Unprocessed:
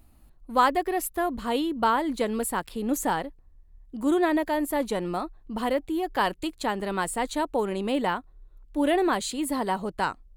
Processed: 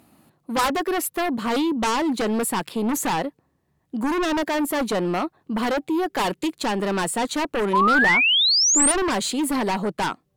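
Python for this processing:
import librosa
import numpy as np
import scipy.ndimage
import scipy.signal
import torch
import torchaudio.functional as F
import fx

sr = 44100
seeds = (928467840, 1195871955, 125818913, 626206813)

p1 = scipy.signal.sosfilt(scipy.signal.butter(4, 130.0, 'highpass', fs=sr, output='sos'), x)
p2 = fx.high_shelf(p1, sr, hz=4900.0, db=-4.0)
p3 = fx.fold_sine(p2, sr, drive_db=12, ceiling_db=-14.0)
p4 = p2 + F.gain(torch.from_numpy(p3), -6.0).numpy()
p5 = fx.spec_paint(p4, sr, seeds[0], shape='rise', start_s=7.73, length_s=1.19, low_hz=950.0, high_hz=9600.0, level_db=-15.0)
y = F.gain(torch.from_numpy(p5), -3.0).numpy()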